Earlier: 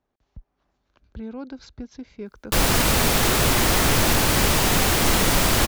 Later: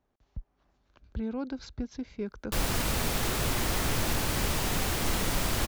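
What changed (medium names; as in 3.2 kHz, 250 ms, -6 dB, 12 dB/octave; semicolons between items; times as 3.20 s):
background -11.0 dB; master: add bass shelf 130 Hz +4 dB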